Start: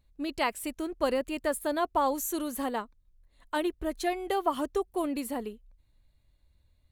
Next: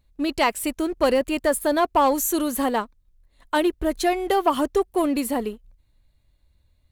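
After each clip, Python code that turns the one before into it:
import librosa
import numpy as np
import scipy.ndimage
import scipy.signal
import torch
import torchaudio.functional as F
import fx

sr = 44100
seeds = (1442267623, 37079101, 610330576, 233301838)

y = fx.leveller(x, sr, passes=1)
y = y * 10.0 ** (5.5 / 20.0)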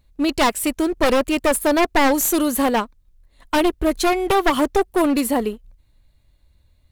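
y = np.minimum(x, 2.0 * 10.0 ** (-20.0 / 20.0) - x)
y = y * 10.0 ** (5.0 / 20.0)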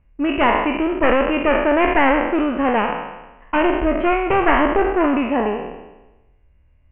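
y = fx.spec_trails(x, sr, decay_s=1.05)
y = scipy.signal.sosfilt(scipy.signal.butter(16, 2900.0, 'lowpass', fs=sr, output='sos'), y)
y = y * 10.0 ** (-1.0 / 20.0)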